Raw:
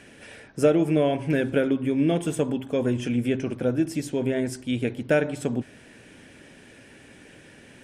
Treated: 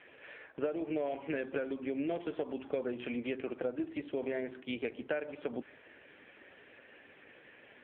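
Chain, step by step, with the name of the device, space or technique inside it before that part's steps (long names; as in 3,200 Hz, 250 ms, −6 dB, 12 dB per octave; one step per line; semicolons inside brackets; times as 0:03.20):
voicemail (band-pass filter 440–3,200 Hz; downward compressor 6 to 1, threshold −31 dBFS, peak gain reduction 14 dB; AMR narrowband 5.9 kbit/s 8,000 Hz)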